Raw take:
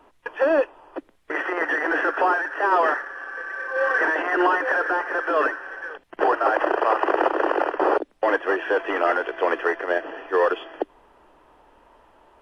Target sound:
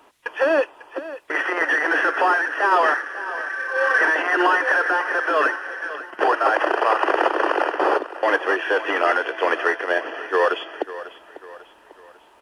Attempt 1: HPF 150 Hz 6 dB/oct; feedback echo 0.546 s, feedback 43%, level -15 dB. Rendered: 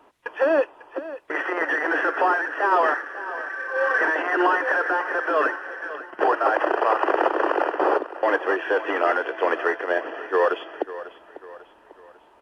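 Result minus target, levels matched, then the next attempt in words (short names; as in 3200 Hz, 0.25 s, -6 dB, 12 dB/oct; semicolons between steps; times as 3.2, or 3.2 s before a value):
4000 Hz band -4.5 dB
HPF 150 Hz 6 dB/oct; high shelf 2100 Hz +10.5 dB; feedback echo 0.546 s, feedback 43%, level -15 dB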